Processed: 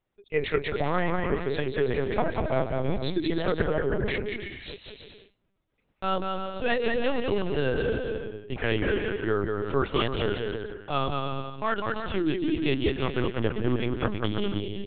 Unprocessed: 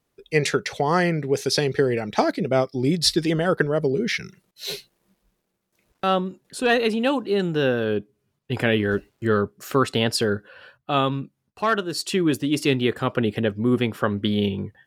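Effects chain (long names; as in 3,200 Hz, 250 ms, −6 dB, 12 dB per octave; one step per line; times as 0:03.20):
bouncing-ball delay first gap 190 ms, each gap 0.7×, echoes 5
linear-prediction vocoder at 8 kHz pitch kept
level −6 dB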